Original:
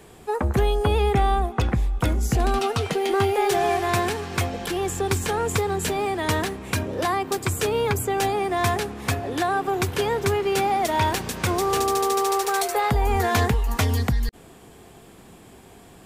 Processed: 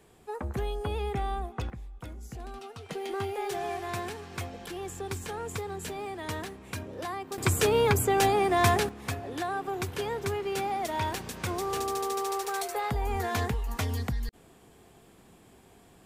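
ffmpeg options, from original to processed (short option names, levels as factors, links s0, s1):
-af "asetnsamples=n=441:p=0,asendcmd='1.7 volume volume -20dB;2.89 volume volume -12dB;7.38 volume volume -0.5dB;8.89 volume volume -9dB',volume=0.266"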